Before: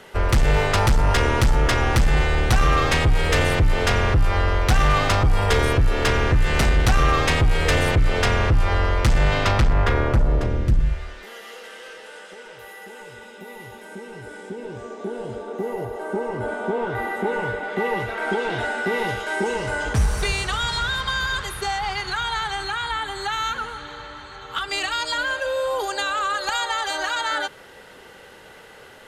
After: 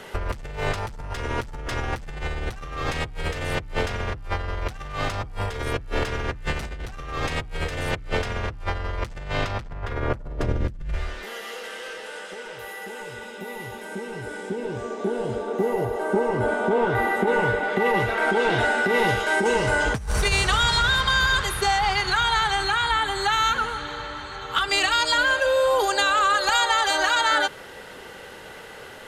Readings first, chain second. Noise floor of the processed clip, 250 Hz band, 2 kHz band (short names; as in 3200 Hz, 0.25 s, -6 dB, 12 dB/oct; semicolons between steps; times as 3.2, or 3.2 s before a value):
-41 dBFS, -3.0 dB, +1.0 dB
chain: negative-ratio compressor -23 dBFS, ratio -0.5